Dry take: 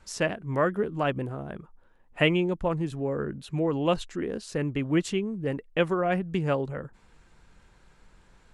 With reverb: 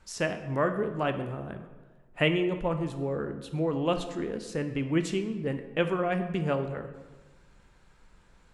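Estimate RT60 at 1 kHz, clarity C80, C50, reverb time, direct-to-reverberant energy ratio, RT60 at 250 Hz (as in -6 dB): 1.3 s, 11.5 dB, 9.5 dB, 1.3 s, 7.5 dB, 1.5 s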